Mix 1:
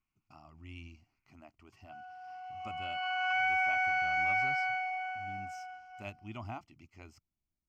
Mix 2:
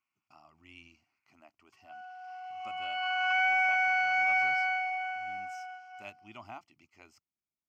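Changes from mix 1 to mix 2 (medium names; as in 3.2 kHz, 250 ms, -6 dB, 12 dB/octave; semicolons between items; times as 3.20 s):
background +4.0 dB; master: add high-pass 550 Hz 6 dB/octave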